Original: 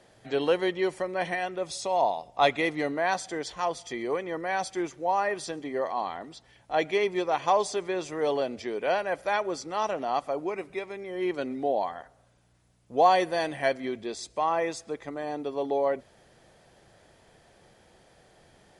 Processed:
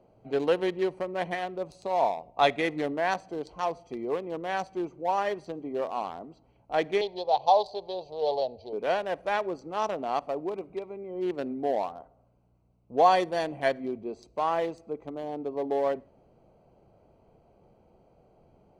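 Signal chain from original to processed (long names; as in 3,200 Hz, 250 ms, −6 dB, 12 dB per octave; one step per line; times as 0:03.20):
adaptive Wiener filter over 25 samples
0:07.01–0:08.73: drawn EQ curve 110 Hz 0 dB, 160 Hz −10 dB, 320 Hz −15 dB, 470 Hz 0 dB, 850 Hz +6 dB, 1,300 Hz −21 dB, 2,300 Hz −14 dB, 4,100 Hz +13 dB, 7,200 Hz −14 dB
convolution reverb, pre-delay 4 ms, DRR 20 dB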